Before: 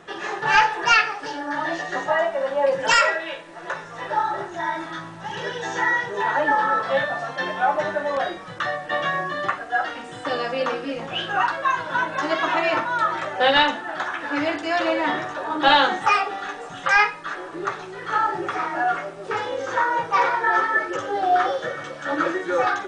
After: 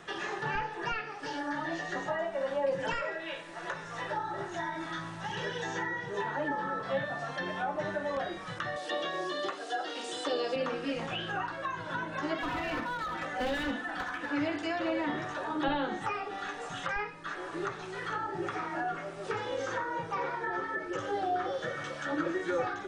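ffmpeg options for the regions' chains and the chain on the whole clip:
ffmpeg -i in.wav -filter_complex "[0:a]asettb=1/sr,asplit=3[link_01][link_02][link_03];[link_01]atrim=end=8.764[link_04];[link_02]atrim=start=8.76:end=10.56,asetpts=PTS-STARTPTS,afade=type=in:duration=0.004:curve=qsin,afade=type=out:start_time=1.796:duration=0.004:curve=qsin,highpass=frequency=380:width_type=q:width=2.2,highshelf=frequency=2800:width_type=q:width=1.5:gain=11[link_05];[link_03]atrim=start=10.556[link_06];[link_04][link_05]acrossfade=duration=0.004:curve1=hsin:curve2=qsin[link_07];[link_07][link_06]acrossfade=duration=0.004:curve1=qsin:curve2=hsin,asettb=1/sr,asplit=3[link_08][link_09][link_10];[link_08]atrim=end=12.384[link_11];[link_09]atrim=start=12.38:end=14.26,asetpts=PTS-STARTPTS,afade=type=in:duration=0.004:curve=qsin,afade=type=out:start_time=1.876:duration=0.004:curve=qsin,aecho=1:1:4:0.77,atrim=end_sample=82908,asoftclip=type=hard:threshold=-19.5dB[link_12];[link_10]atrim=start=14.256[link_13];[link_11][link_12]acrossfade=duration=0.004:curve1=hsin:curve2=qsin[link_14];[link_14][link_13]acrossfade=duration=0.004:curve1=qsin:curve2=hsin,acrossover=split=3200[link_15][link_16];[link_16]acompressor=threshold=-40dB:ratio=4:attack=1:release=60[link_17];[link_15][link_17]amix=inputs=2:normalize=0,equalizer=frequency=450:width_type=o:width=2.9:gain=-5,acrossover=split=480[link_18][link_19];[link_19]acompressor=threshold=-35dB:ratio=6[link_20];[link_18][link_20]amix=inputs=2:normalize=0" out.wav

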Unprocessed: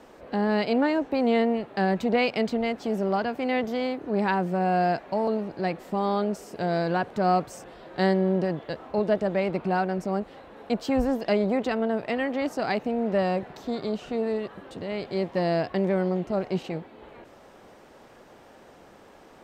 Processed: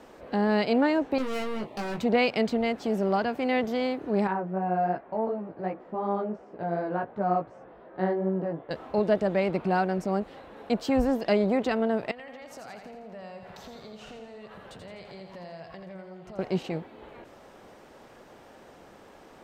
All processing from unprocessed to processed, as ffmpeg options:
ffmpeg -i in.wav -filter_complex "[0:a]asettb=1/sr,asplit=3[link_01][link_02][link_03];[link_01]atrim=end=1.184[link_04];[link_02]atrim=start=1.18:end=2,asetpts=PTS-STARTPTS,afade=type=in:duration=0.004:curve=qsin,afade=type=out:start_time=0.816:duration=0.004:curve=qsin,asuperstop=centerf=1500:order=4:qfactor=2.1,volume=30.5dB,asoftclip=hard,volume=-30.5dB,asplit=2[link_05][link_06];[link_06]adelay=19,volume=-3dB[link_07];[link_05][link_07]amix=inputs=2:normalize=0,atrim=end_sample=36162[link_08];[link_03]atrim=start=1.996[link_09];[link_04][link_08]acrossfade=duration=0.004:curve1=hsin:curve2=qsin[link_10];[link_10][link_09]acrossfade=duration=0.004:curve1=qsin:curve2=hsin,asettb=1/sr,asplit=3[link_11][link_12][link_13];[link_11]atrim=end=4.274[link_14];[link_12]atrim=start=4.27:end=8.71,asetpts=PTS-STARTPTS,afade=type=in:duration=0.004:curve=qsin,afade=type=out:start_time=4.436:duration=0.004:curve=qsin,lowpass=1400,flanger=delay=15:depth=3.3:speed=2.7,lowshelf=frequency=170:gain=-6.5[link_15];[link_13]atrim=start=8.706[link_16];[link_14][link_15]acrossfade=duration=0.004:curve1=hsin:curve2=qsin[link_17];[link_17][link_16]acrossfade=duration=0.004:curve1=qsin:curve2=hsin,asettb=1/sr,asplit=3[link_18][link_19][link_20];[link_18]atrim=end=12.114[link_21];[link_19]atrim=start=12.11:end=16.39,asetpts=PTS-STARTPTS,afade=type=in:duration=0.004:curve=qsin,afade=type=out:start_time=4.276:duration=0.004:curve=qsin,equalizer=frequency=300:width=1.5:gain=-11.5,acompressor=threshold=-42dB:ratio=6:attack=3.2:release=140:knee=1:detection=peak,aecho=1:1:84|168|252|336|420|504|588:0.473|0.26|0.143|0.0787|0.0433|0.0238|0.0131,atrim=end_sample=188748[link_22];[link_20]atrim=start=16.386[link_23];[link_21][link_22]acrossfade=duration=0.004:curve1=hsin:curve2=qsin[link_24];[link_24][link_23]acrossfade=duration=0.004:curve1=qsin:curve2=hsin" out.wav

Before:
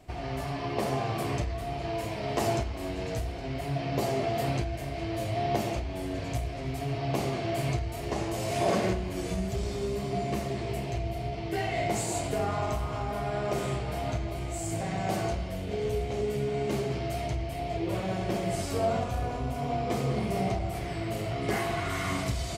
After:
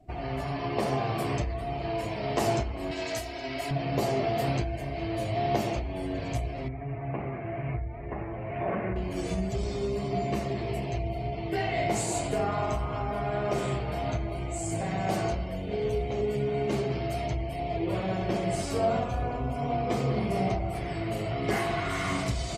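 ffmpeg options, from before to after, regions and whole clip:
ffmpeg -i in.wav -filter_complex "[0:a]asettb=1/sr,asplit=3[link_01][link_02][link_03];[link_01]atrim=end=2.914[link_04];[link_02]atrim=start=2.91:end=3.71,asetpts=PTS-STARTPTS,afade=type=in:duration=0.004:curve=qsin,afade=type=out:start_time=0.796:duration=0.004:curve=qsin,highpass=93,tiltshelf=frequency=880:gain=-5.5,aecho=1:1:3.1:0.61,atrim=end_sample=35280[link_05];[link_03]atrim=start=3.706[link_06];[link_04][link_05]acrossfade=duration=0.004:curve1=hsin:curve2=qsin[link_07];[link_07][link_06]acrossfade=duration=0.004:curve1=qsin:curve2=hsin,asettb=1/sr,asplit=3[link_08][link_09][link_10];[link_08]atrim=end=6.684[link_11];[link_09]atrim=start=6.68:end=8.96,asetpts=PTS-STARTPTS,afade=type=in:duration=0.004:curve=qsin,afade=type=out:start_time=2.276:duration=0.004:curve=qsin,lowpass=frequency=2200:width=0.5412,lowpass=frequency=2200:width=1.3066,equalizer=frequency=420:width=0.31:gain=-6.5[link_12];[link_10]atrim=start=8.956[link_13];[link_11][link_12]acrossfade=duration=0.004:curve1=hsin:curve2=qsin[link_14];[link_14][link_13]acrossfade=duration=0.004:curve1=qsin:curve2=hsin,afftdn=noise_reduction=17:noise_floor=-50,equalizer=frequency=85:width_type=o:width=0.29:gain=-6.5,volume=1.5dB" out.wav

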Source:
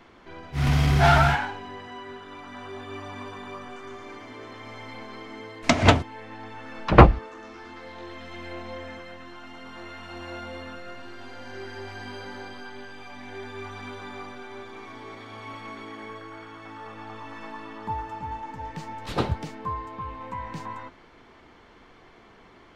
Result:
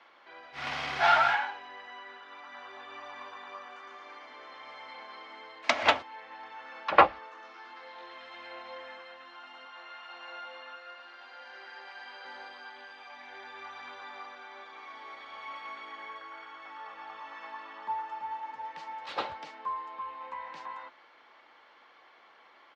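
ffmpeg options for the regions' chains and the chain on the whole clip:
ffmpeg -i in.wav -filter_complex "[0:a]asettb=1/sr,asplit=3[link_01][link_02][link_03];[link_01]atrim=end=9.654[link_04];[link_02]atrim=start=9.65:end=12.25,asetpts=PTS-STARTPTS,afade=type=in:duration=0.004:curve=qsin,afade=type=out:start_time=2.596:duration=0.004:curve=qsin,highpass=frequency=530:poles=1,highshelf=frequency=7100:gain=-7.5[link_05];[link_03]atrim=start=12.246[link_06];[link_04][link_05]acrossfade=duration=0.004:curve1=hsin:curve2=qsin[link_07];[link_07][link_06]acrossfade=duration=0.004:curve1=qsin:curve2=hsin,highpass=110,acrossover=split=540 5300:gain=0.0631 1 0.0631[link_08][link_09][link_10];[link_08][link_09][link_10]amix=inputs=3:normalize=0,aecho=1:1:3.6:0.31,volume=-2.5dB" out.wav

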